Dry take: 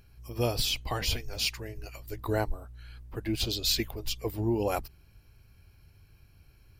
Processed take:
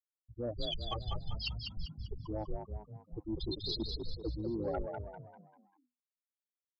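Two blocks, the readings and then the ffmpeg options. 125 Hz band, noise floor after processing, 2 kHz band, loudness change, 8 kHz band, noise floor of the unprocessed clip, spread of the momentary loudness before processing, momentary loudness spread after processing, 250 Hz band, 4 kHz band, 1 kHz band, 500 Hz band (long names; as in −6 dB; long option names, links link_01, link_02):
−7.0 dB, below −85 dBFS, −14.5 dB, −9.0 dB, below −30 dB, −59 dBFS, 15 LU, 10 LU, −6.0 dB, −9.0 dB, −8.5 dB, −7.0 dB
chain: -filter_complex "[0:a]afwtdn=0.0224,afftfilt=real='re*gte(hypot(re,im),0.0891)':imag='im*gte(hypot(re,im),0.0891)':win_size=1024:overlap=0.75,aecho=1:1:3.6:0.56,adynamicequalizer=threshold=0.00708:dfrequency=610:dqfactor=0.77:tfrequency=610:tqfactor=0.77:attack=5:release=100:ratio=0.375:range=2:mode=cutabove:tftype=bell,areverse,acompressor=threshold=-37dB:ratio=12,areverse,asoftclip=type=tanh:threshold=-31dB,asplit=6[link_01][link_02][link_03][link_04][link_05][link_06];[link_02]adelay=197,afreqshift=49,volume=-5dB[link_07];[link_03]adelay=394,afreqshift=98,volume=-12.7dB[link_08];[link_04]adelay=591,afreqshift=147,volume=-20.5dB[link_09];[link_05]adelay=788,afreqshift=196,volume=-28.2dB[link_10];[link_06]adelay=985,afreqshift=245,volume=-36dB[link_11];[link_01][link_07][link_08][link_09][link_10][link_11]amix=inputs=6:normalize=0,aresample=16000,aresample=44100,volume=4dB"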